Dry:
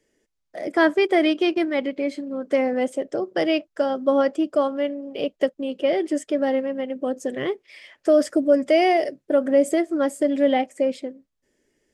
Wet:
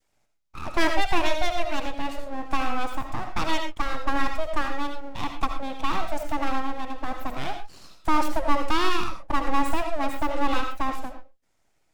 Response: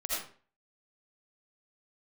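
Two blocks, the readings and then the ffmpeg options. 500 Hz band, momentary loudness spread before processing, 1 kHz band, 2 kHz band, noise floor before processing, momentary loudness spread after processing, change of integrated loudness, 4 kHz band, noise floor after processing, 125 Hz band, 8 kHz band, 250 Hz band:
−13.0 dB, 9 LU, +2.0 dB, −1.0 dB, −76 dBFS, 9 LU, −6.0 dB, 0.0 dB, −69 dBFS, can't be measured, −1.0 dB, −9.0 dB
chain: -filter_complex "[0:a]adynamicequalizer=threshold=0.0282:dfrequency=820:dqfactor=0.75:tfrequency=820:tqfactor=0.75:attack=5:release=100:ratio=0.375:range=1.5:mode=cutabove:tftype=bell,aeval=exprs='abs(val(0))':channel_layout=same,asplit=2[link_01][link_02];[1:a]atrim=start_sample=2205,afade=type=out:start_time=0.19:duration=0.01,atrim=end_sample=8820[link_03];[link_02][link_03]afir=irnorm=-1:irlink=0,volume=-6.5dB[link_04];[link_01][link_04]amix=inputs=2:normalize=0,volume=-4dB"

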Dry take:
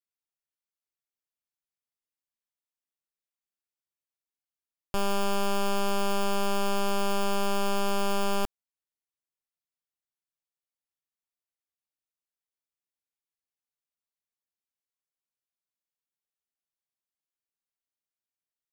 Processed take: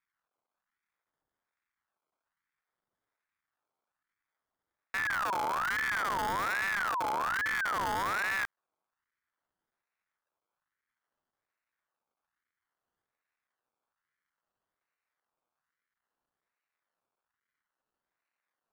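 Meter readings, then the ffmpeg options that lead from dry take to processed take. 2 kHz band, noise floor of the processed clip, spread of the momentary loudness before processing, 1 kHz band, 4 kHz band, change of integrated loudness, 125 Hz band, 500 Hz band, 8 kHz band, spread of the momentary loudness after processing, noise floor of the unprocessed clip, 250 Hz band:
+8.5 dB, below −85 dBFS, 2 LU, −0.5 dB, −7.5 dB, −1.5 dB, can't be measured, −12.5 dB, −7.5 dB, 2 LU, below −85 dBFS, −15.0 dB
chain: -af "acontrast=26,alimiter=level_in=6.5dB:limit=-24dB:level=0:latency=1,volume=-6.5dB,acrusher=samples=37:mix=1:aa=0.000001:lfo=1:lforange=22.2:lforate=0.59,aeval=exprs='val(0)*sin(2*PI*1300*n/s+1300*0.35/1.2*sin(2*PI*1.2*n/s))':channel_layout=same,volume=2dB"

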